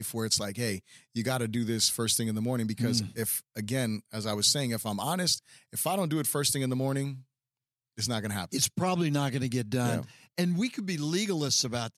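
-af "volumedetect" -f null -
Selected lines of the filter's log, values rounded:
mean_volume: -30.3 dB
max_volume: -9.0 dB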